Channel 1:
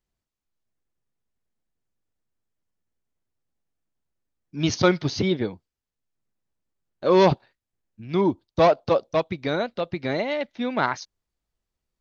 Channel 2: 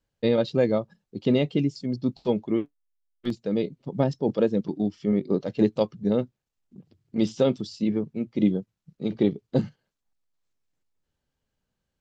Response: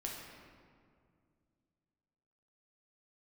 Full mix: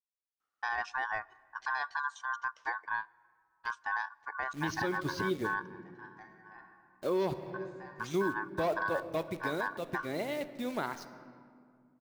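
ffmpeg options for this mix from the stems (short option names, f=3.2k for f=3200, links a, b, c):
-filter_complex "[0:a]equalizer=f=360:t=o:w=0.57:g=5,acrusher=bits=7:dc=4:mix=0:aa=0.000001,volume=-12.5dB,asplit=3[a][b][c];[b]volume=-8dB[d];[1:a]aeval=exprs='val(0)*sin(2*PI*1300*n/s)':c=same,adelay=400,volume=-5dB,asplit=2[e][f];[f]volume=-23.5dB[g];[c]apad=whole_len=547061[h];[e][h]sidechaingate=range=-33dB:threshold=-60dB:ratio=16:detection=peak[i];[2:a]atrim=start_sample=2205[j];[d][g]amix=inputs=2:normalize=0[k];[k][j]afir=irnorm=-1:irlink=0[l];[a][i][l]amix=inputs=3:normalize=0,alimiter=limit=-22dB:level=0:latency=1:release=240"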